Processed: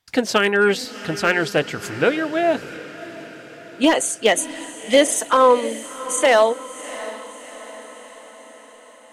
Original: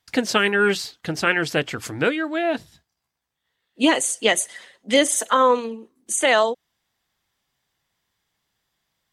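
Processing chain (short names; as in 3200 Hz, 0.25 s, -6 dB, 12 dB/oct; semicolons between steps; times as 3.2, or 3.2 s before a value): hard clip -10 dBFS, distortion -21 dB; diffused feedback echo 0.688 s, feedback 57%, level -13.5 dB; dynamic EQ 610 Hz, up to +5 dB, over -29 dBFS, Q 0.92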